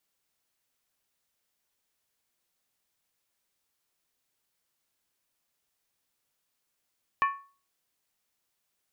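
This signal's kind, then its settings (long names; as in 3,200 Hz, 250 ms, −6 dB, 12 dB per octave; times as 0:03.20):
struck skin, lowest mode 1,110 Hz, decay 0.38 s, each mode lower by 7 dB, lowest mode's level −19 dB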